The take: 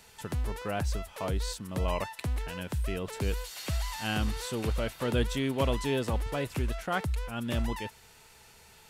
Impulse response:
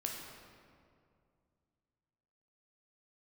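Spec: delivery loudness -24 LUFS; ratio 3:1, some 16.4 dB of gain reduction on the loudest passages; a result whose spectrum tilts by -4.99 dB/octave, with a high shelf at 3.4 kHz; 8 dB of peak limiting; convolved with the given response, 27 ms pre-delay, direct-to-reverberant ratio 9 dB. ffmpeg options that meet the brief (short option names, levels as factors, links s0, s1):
-filter_complex "[0:a]highshelf=f=3400:g=-4,acompressor=threshold=0.00447:ratio=3,alimiter=level_in=6.31:limit=0.0631:level=0:latency=1,volume=0.158,asplit=2[s0][s1];[1:a]atrim=start_sample=2205,adelay=27[s2];[s1][s2]afir=irnorm=-1:irlink=0,volume=0.316[s3];[s0][s3]amix=inputs=2:normalize=0,volume=18.8"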